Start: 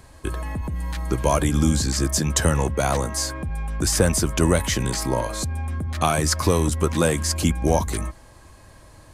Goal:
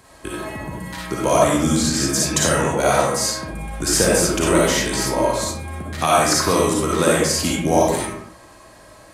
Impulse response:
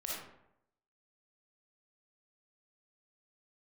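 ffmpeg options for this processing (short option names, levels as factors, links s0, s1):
-filter_complex "[0:a]highpass=f=220:p=1[s0];[1:a]atrim=start_sample=2205,afade=t=out:st=0.35:d=0.01,atrim=end_sample=15876[s1];[s0][s1]afir=irnorm=-1:irlink=0,volume=1.78"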